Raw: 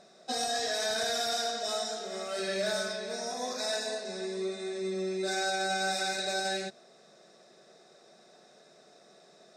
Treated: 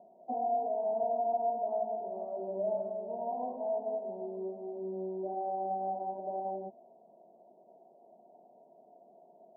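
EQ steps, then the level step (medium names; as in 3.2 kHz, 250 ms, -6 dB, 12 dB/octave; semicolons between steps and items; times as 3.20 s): high-pass 630 Hz 6 dB/octave; rippled Chebyshev low-pass 970 Hz, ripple 9 dB; +8.0 dB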